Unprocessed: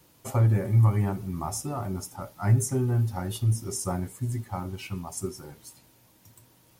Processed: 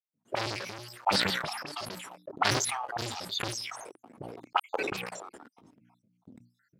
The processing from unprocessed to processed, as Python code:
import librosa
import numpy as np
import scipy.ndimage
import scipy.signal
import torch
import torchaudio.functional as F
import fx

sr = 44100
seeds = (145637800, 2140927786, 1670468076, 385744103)

p1 = fx.spec_dropout(x, sr, seeds[0], share_pct=73)
p2 = fx.hum_notches(p1, sr, base_hz=60, count=5)
p3 = fx.leveller(p2, sr, passes=5)
p4 = fx.level_steps(p3, sr, step_db=22)
p5 = p3 + (p4 * librosa.db_to_amplitude(1.0))
p6 = fx.high_shelf(p5, sr, hz=3000.0, db=-8.5)
p7 = fx.auto_wah(p6, sr, base_hz=200.0, top_hz=4900.0, q=3.6, full_db=-13.5, direction='up')
p8 = fx.low_shelf(p7, sr, hz=230.0, db=-5.0)
p9 = fx.sustainer(p8, sr, db_per_s=31.0)
y = p9 * librosa.db_to_amplitude(2.0)